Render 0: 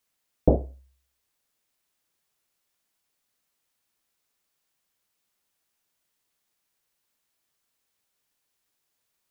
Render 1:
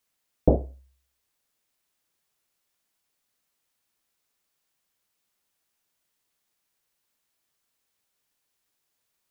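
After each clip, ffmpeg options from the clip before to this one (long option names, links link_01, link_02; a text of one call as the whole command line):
ffmpeg -i in.wav -af anull out.wav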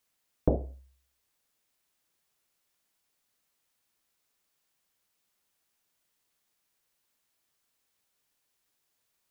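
ffmpeg -i in.wav -af "acompressor=threshold=-23dB:ratio=2.5" out.wav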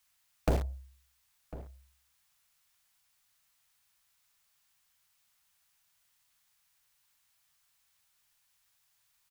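ffmpeg -i in.wav -filter_complex "[0:a]acrossover=split=170|700[link_01][link_02][link_03];[link_02]acrusher=bits=4:dc=4:mix=0:aa=0.000001[link_04];[link_01][link_04][link_03]amix=inputs=3:normalize=0,asoftclip=type=tanh:threshold=-25.5dB,asplit=2[link_05][link_06];[link_06]adelay=1050,volume=-16dB,highshelf=frequency=4000:gain=-23.6[link_07];[link_05][link_07]amix=inputs=2:normalize=0,volume=5dB" out.wav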